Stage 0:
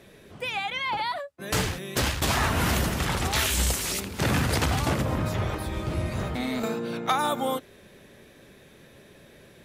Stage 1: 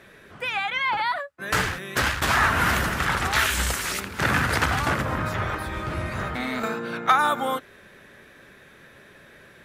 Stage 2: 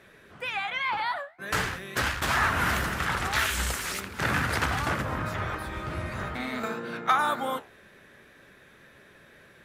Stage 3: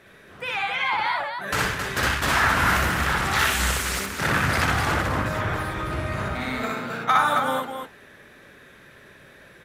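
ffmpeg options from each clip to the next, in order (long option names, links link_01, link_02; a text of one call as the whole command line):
ffmpeg -i in.wav -af "equalizer=frequency=1500:width_type=o:width=1.3:gain=12,volume=-2dB" out.wav
ffmpeg -i in.wav -af "flanger=delay=9.3:depth=9.5:regen=-75:speed=2:shape=triangular" out.wav
ffmpeg -i in.wav -af "aecho=1:1:61.22|268.2:0.891|0.562,volume=2dB" out.wav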